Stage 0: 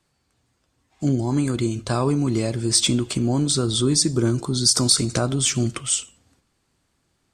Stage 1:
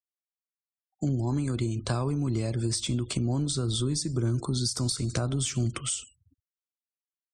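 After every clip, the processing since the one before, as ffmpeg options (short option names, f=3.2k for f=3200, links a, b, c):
-filter_complex "[0:a]afftfilt=real='re*gte(hypot(re,im),0.00708)':imag='im*gte(hypot(re,im),0.00708)':win_size=1024:overlap=0.75,acrossover=split=120[a][b];[b]acompressor=threshold=-28dB:ratio=10[c];[a][c]amix=inputs=2:normalize=0"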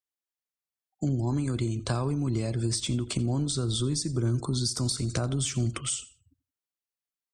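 -af "aecho=1:1:86|172:0.106|0.0307"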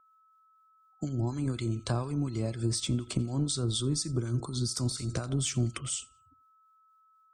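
-filter_complex "[0:a]aeval=exprs='val(0)+0.00126*sin(2*PI*1300*n/s)':c=same,acrossover=split=1300[a][b];[a]aeval=exprs='val(0)*(1-0.7/2+0.7/2*cos(2*PI*4.1*n/s))':c=same[c];[b]aeval=exprs='val(0)*(1-0.7/2-0.7/2*cos(2*PI*4.1*n/s))':c=same[d];[c][d]amix=inputs=2:normalize=0"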